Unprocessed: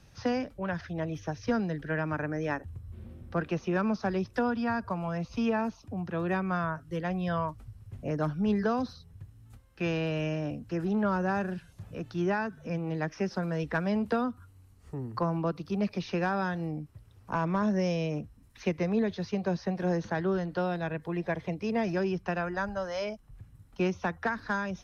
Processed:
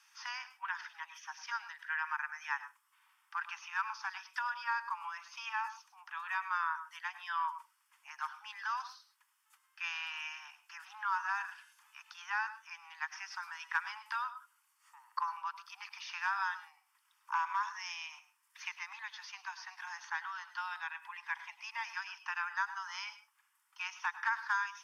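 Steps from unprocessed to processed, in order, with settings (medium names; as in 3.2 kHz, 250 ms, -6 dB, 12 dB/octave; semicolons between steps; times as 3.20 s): steep high-pass 880 Hz 96 dB/octave; band-stop 4 kHz, Q 6; on a send: reverberation RT60 0.20 s, pre-delay 96 ms, DRR 13 dB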